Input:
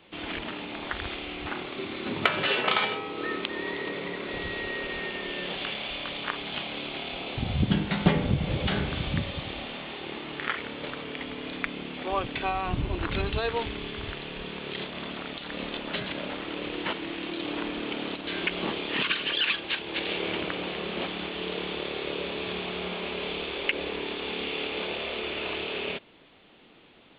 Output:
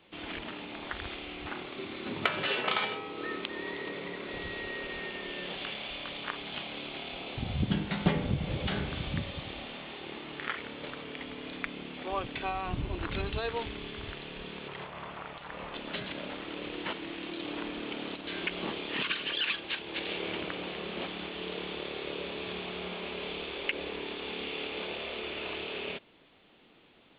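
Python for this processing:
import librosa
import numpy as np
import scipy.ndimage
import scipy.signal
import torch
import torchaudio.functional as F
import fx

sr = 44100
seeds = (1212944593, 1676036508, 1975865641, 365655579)

y = fx.graphic_eq_10(x, sr, hz=(125, 250, 1000, 4000), db=(6, -11, 7, -10), at=(14.68, 15.75))
y = y * librosa.db_to_amplitude(-5.0)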